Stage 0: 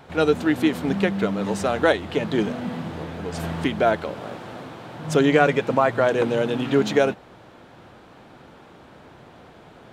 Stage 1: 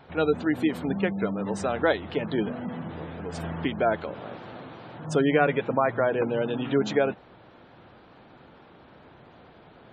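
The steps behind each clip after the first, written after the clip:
gate on every frequency bin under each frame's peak −30 dB strong
level −4.5 dB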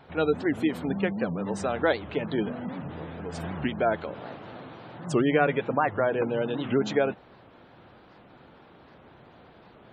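wow of a warped record 78 rpm, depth 250 cents
level −1 dB

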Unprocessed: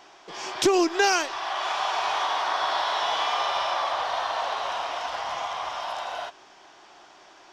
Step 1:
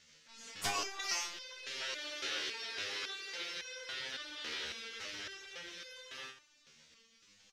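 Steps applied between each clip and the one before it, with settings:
gate on every frequency bin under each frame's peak −15 dB weak
echo with shifted repeats 132 ms, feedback 53%, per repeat −33 Hz, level −17.5 dB
step-sequenced resonator 3.6 Hz 77–510 Hz
level +6 dB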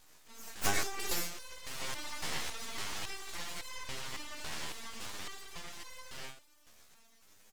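flat-topped bell 3,200 Hz −10 dB
full-wave rectification
level +9.5 dB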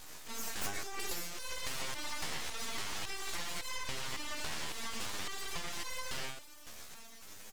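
downward compressor 10 to 1, threshold −45 dBFS, peak gain reduction 21.5 dB
level +11.5 dB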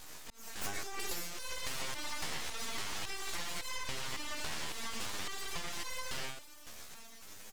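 volume swells 407 ms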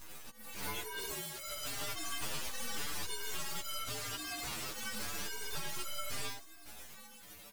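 partials spread apart or drawn together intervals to 119%
level +4 dB

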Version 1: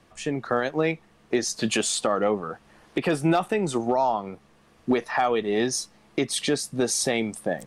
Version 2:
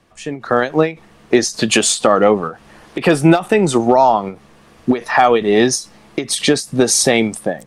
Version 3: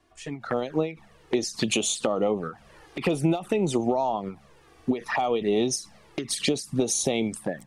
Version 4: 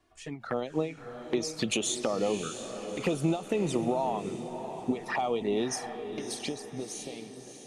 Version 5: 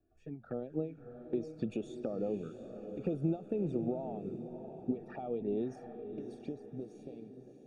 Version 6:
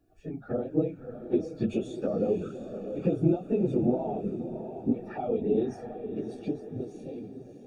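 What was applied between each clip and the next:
automatic gain control gain up to 11.5 dB; every ending faded ahead of time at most 210 dB per second; level +1.5 dB
downward compressor 4 to 1, threshold −14 dBFS, peak gain reduction 7.5 dB; flanger swept by the level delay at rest 2.9 ms, full sweep at −14.5 dBFS; level −5.5 dB
fade-out on the ending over 2.40 s; feedback delay with all-pass diffusion 632 ms, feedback 43%, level −9 dB; level −4.5 dB
moving average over 43 samples; level −3.5 dB
random phases in long frames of 50 ms; level +8 dB

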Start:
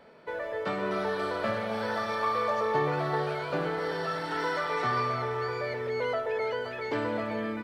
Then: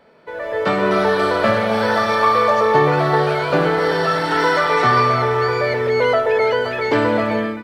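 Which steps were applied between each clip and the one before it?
automatic gain control gain up to 12 dB
level +2 dB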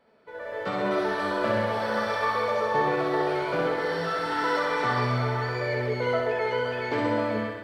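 flanger 0.69 Hz, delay 7.8 ms, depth 8.9 ms, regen +64%
on a send: flutter between parallel walls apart 11.1 metres, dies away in 0.99 s
on the sum: level −8 dB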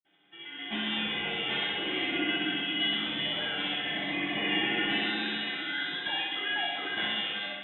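voice inversion scrambler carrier 3,800 Hz
convolution reverb RT60 0.30 s, pre-delay 46 ms
level +2.5 dB

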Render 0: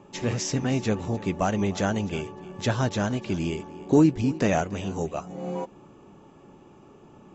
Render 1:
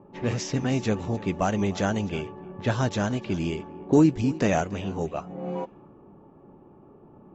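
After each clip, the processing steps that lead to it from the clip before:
low-pass that shuts in the quiet parts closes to 930 Hz, open at −20.5 dBFS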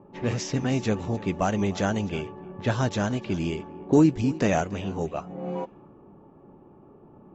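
no processing that can be heard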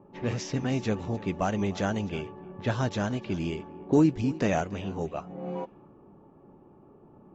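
low-pass filter 6,900 Hz 12 dB per octave
level −3 dB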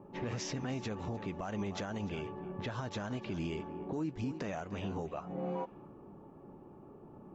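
dynamic equaliser 1,100 Hz, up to +5 dB, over −42 dBFS, Q 0.95
downward compressor 5 to 1, threshold −33 dBFS, peak gain reduction 15.5 dB
brickwall limiter −29.5 dBFS, peak gain reduction 8.5 dB
level +1 dB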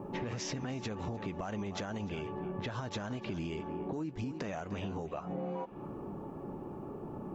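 downward compressor 6 to 1, threshold −46 dBFS, peak gain reduction 13 dB
level +10.5 dB

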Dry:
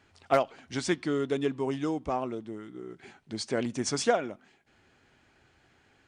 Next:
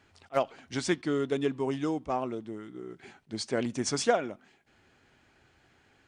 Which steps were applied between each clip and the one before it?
level that may rise only so fast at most 510 dB per second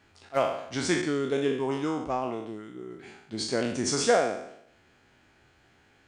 peak hold with a decay on every bin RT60 0.74 s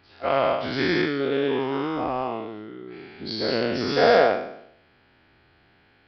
every bin's largest magnitude spread in time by 240 ms
harmonic generator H 7 −29 dB, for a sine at −3.5 dBFS
downsampling to 11,025 Hz

